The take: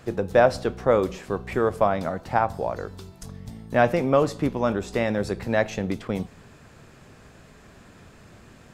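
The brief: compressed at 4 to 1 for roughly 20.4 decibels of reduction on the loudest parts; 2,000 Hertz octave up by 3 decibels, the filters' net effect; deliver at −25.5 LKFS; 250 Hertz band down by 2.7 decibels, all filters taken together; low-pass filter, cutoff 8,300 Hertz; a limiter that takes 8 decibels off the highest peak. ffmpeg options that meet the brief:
ffmpeg -i in.wav -af "lowpass=8300,equalizer=frequency=250:width_type=o:gain=-3.5,equalizer=frequency=2000:width_type=o:gain=4,acompressor=threshold=-38dB:ratio=4,volume=18dB,alimiter=limit=-11dB:level=0:latency=1" out.wav

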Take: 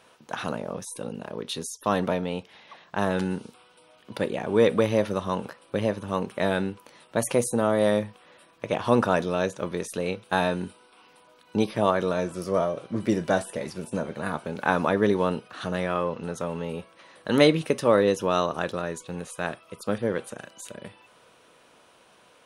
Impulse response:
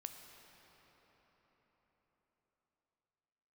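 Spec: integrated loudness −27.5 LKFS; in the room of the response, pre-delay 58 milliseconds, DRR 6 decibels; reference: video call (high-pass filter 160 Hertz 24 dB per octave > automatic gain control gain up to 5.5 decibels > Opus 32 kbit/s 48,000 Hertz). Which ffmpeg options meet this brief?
-filter_complex "[0:a]asplit=2[link_01][link_02];[1:a]atrim=start_sample=2205,adelay=58[link_03];[link_02][link_03]afir=irnorm=-1:irlink=0,volume=-2dB[link_04];[link_01][link_04]amix=inputs=2:normalize=0,highpass=frequency=160:width=0.5412,highpass=frequency=160:width=1.3066,dynaudnorm=maxgain=5.5dB,volume=-2.5dB" -ar 48000 -c:a libopus -b:a 32k

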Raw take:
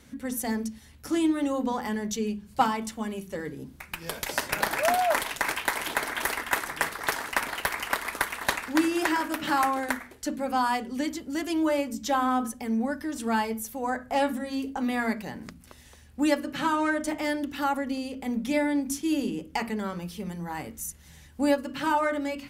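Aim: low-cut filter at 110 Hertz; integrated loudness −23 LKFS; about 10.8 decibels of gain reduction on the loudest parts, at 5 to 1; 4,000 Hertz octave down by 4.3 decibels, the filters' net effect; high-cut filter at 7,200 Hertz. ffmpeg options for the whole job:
ffmpeg -i in.wav -af "highpass=110,lowpass=7200,equalizer=frequency=4000:width_type=o:gain=-5.5,acompressor=threshold=-30dB:ratio=5,volume=12dB" out.wav

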